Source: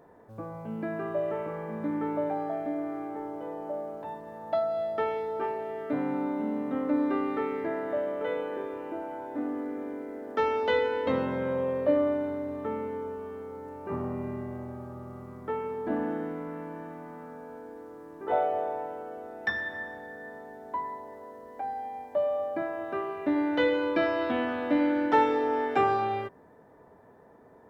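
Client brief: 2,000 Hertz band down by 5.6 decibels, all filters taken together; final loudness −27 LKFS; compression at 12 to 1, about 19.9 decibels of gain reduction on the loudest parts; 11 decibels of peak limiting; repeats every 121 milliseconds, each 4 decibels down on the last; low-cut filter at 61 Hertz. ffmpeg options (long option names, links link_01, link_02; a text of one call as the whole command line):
ffmpeg -i in.wav -af "highpass=61,equalizer=frequency=2000:width_type=o:gain=-7,acompressor=threshold=-40dB:ratio=12,alimiter=level_in=15dB:limit=-24dB:level=0:latency=1,volume=-15dB,aecho=1:1:121|242|363|484|605|726|847|968|1089:0.631|0.398|0.25|0.158|0.0994|0.0626|0.0394|0.0249|0.0157,volume=17.5dB" out.wav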